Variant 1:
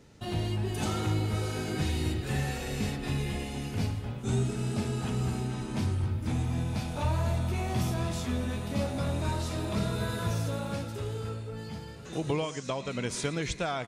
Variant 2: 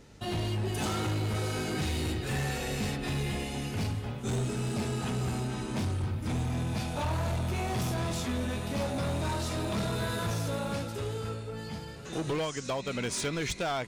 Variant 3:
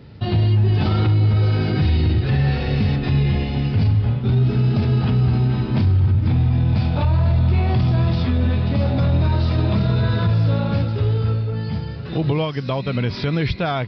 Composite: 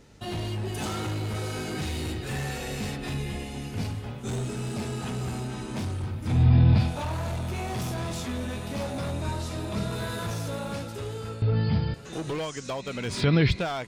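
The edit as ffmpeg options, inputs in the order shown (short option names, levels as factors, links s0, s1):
-filter_complex "[0:a]asplit=2[s0][s1];[2:a]asplit=3[s2][s3][s4];[1:a]asplit=6[s5][s6][s7][s8][s9][s10];[s5]atrim=end=3.142[s11];[s0]atrim=start=3.138:end=3.832[s12];[s6]atrim=start=3.828:end=6.49[s13];[s2]atrim=start=6.25:end=6.95[s14];[s7]atrim=start=6.71:end=9.112[s15];[s1]atrim=start=9.108:end=9.912[s16];[s8]atrim=start=9.908:end=11.422[s17];[s3]atrim=start=11.418:end=11.942[s18];[s9]atrim=start=11.938:end=13.28[s19];[s4]atrim=start=13.04:end=13.69[s20];[s10]atrim=start=13.45[s21];[s11][s12]acrossfade=d=0.004:c1=hsin:c2=hsin[s22];[s22][s13]acrossfade=d=0.004:c1=hsin:c2=hsin[s23];[s23][s14]acrossfade=d=0.24:c1=tri:c2=tri[s24];[s24][s15]acrossfade=d=0.24:c1=tri:c2=tri[s25];[s25][s16]acrossfade=d=0.004:c1=hsin:c2=hsin[s26];[s26][s17]acrossfade=d=0.004:c1=hsin:c2=hsin[s27];[s27][s18]acrossfade=d=0.004:c1=hsin:c2=hsin[s28];[s28][s19]acrossfade=d=0.004:c1=hsin:c2=hsin[s29];[s29][s20]acrossfade=d=0.24:c1=tri:c2=tri[s30];[s30][s21]acrossfade=d=0.24:c1=tri:c2=tri"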